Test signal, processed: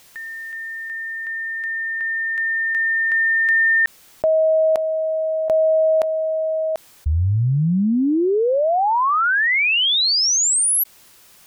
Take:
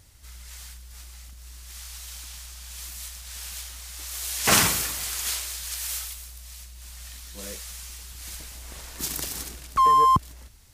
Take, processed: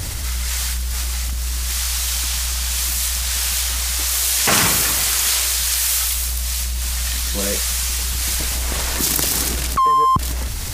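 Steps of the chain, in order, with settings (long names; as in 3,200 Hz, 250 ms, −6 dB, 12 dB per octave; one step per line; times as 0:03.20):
envelope flattener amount 70%
level +2 dB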